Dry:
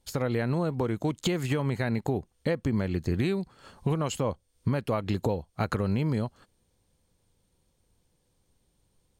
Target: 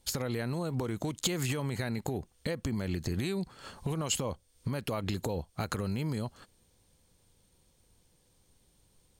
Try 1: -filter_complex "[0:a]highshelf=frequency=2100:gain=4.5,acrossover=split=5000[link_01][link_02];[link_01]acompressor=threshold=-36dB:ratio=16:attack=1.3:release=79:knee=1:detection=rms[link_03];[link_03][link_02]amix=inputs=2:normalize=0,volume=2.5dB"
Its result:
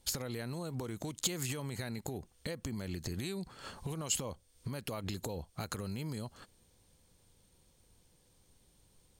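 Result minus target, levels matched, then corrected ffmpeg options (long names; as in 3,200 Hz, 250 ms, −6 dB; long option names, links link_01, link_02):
downward compressor: peak gain reduction +6.5 dB
-filter_complex "[0:a]highshelf=frequency=2100:gain=4.5,acrossover=split=5000[link_01][link_02];[link_01]acompressor=threshold=-29dB:ratio=16:attack=1.3:release=79:knee=1:detection=rms[link_03];[link_03][link_02]amix=inputs=2:normalize=0,volume=2.5dB"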